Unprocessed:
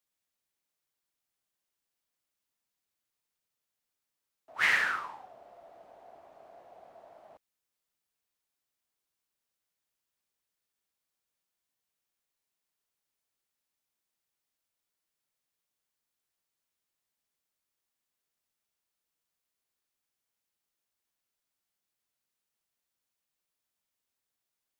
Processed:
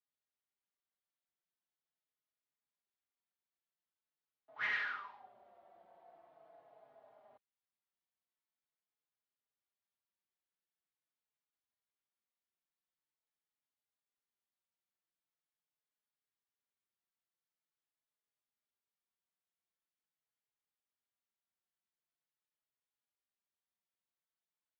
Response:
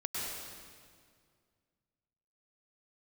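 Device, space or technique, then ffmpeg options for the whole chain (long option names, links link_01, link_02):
barber-pole flanger into a guitar amplifier: -filter_complex "[0:a]asettb=1/sr,asplit=3[link_01][link_02][link_03];[link_01]atrim=end=4.724[link_04];[link_02]atrim=start=4.72:end=5.21,asetpts=PTS-STARTPTS,afade=type=in:duration=0.004:curve=qsin,afade=type=out:start_time=0.486:duration=0.004:curve=qsin,tiltshelf=frequency=1500:gain=-4.5[link_05];[link_03]atrim=start=5.206[link_06];[link_04][link_05]acrossfade=duration=0.004:curve1=hsin:curve2=qsin[link_07];[link_07][link_06]acrossfade=duration=0.004:curve1=qsin:curve2=hsin,asplit=2[link_08][link_09];[link_09]adelay=4.3,afreqshift=-0.44[link_10];[link_08][link_10]amix=inputs=2:normalize=1,asoftclip=type=tanh:threshold=-22dB,highpass=100,equalizer=frequency=290:width_type=q:width=4:gain=-3,equalizer=frequency=530:width_type=q:width=4:gain=-3,equalizer=frequency=2600:width_type=q:width=4:gain=-4,lowpass=frequency=3800:width=0.5412,lowpass=frequency=3800:width=1.3066,volume=-5.5dB"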